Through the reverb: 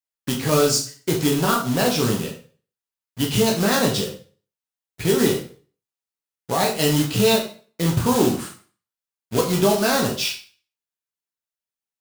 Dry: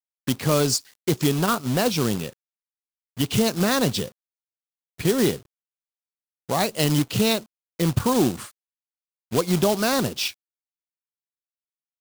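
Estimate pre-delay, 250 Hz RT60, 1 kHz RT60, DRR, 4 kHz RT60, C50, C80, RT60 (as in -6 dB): 5 ms, 0.40 s, 0.40 s, -1.5 dB, 0.40 s, 8.0 dB, 12.0 dB, 0.40 s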